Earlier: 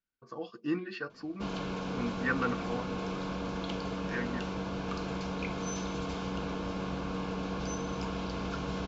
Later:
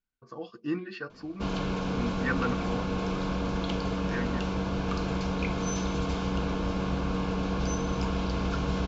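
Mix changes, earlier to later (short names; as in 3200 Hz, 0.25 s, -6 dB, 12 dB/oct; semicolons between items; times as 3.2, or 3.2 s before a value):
background +4.0 dB; master: add low shelf 85 Hz +11 dB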